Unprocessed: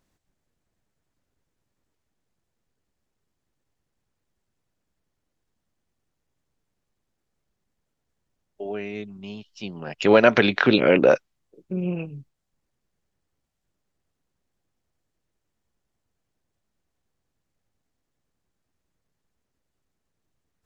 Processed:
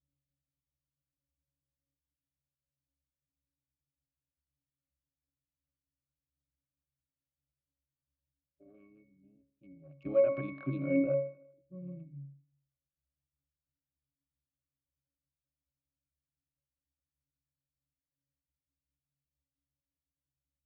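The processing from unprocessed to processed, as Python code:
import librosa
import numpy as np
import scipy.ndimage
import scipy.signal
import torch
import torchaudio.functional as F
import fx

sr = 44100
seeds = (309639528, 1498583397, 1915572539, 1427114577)

y = fx.wiener(x, sr, points=41)
y = fx.dynamic_eq(y, sr, hz=170.0, q=0.73, threshold_db=-33.0, ratio=4.0, max_db=6)
y = fx.octave_resonator(y, sr, note='C#', decay_s=0.51)
y = fx.echo_feedback(y, sr, ms=78, feedback_pct=57, wet_db=-19.0)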